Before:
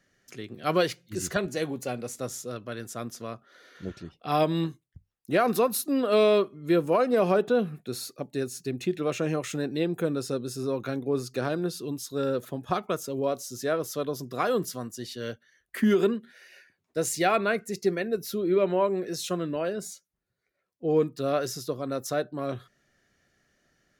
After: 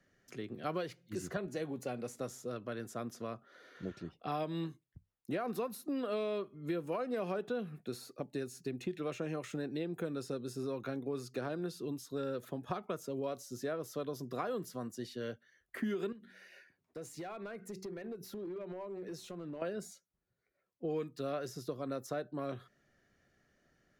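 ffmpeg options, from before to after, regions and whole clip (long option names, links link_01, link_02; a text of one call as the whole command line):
ffmpeg -i in.wav -filter_complex "[0:a]asettb=1/sr,asplit=3[link_01][link_02][link_03];[link_01]atrim=end=16.124[link_04];[link_02]atrim=start=16.12:end=19.62,asetpts=PTS-STARTPTS,afade=type=in:duration=0.004:curve=qsin,afade=type=out:start_time=3.496:duration=0.004:curve=qsin,bandreject=frequency=94.36:width_type=h:width=4,bandreject=frequency=188.72:width_type=h:width=4,bandreject=frequency=283.08:width_type=h:width=4,bandreject=frequency=377.44:width_type=h:width=4,acompressor=threshold=-37dB:ratio=10:attack=3.2:release=140:knee=1:detection=peak,asoftclip=type=hard:threshold=-36dB[link_05];[link_03]atrim=start=19.616[link_06];[link_04][link_05]acrossfade=duration=0.004:curve1=hsin:curve2=qsin[link_07];[link_07][link_06]acrossfade=duration=0.004:curve1=qsin:curve2=hsin,highshelf=frequency=2300:gain=-8,acrossover=split=130|1500[link_08][link_09][link_10];[link_08]acompressor=threshold=-56dB:ratio=4[link_11];[link_09]acompressor=threshold=-35dB:ratio=4[link_12];[link_10]acompressor=threshold=-48dB:ratio=4[link_13];[link_11][link_12][link_13]amix=inputs=3:normalize=0,volume=-1.5dB" out.wav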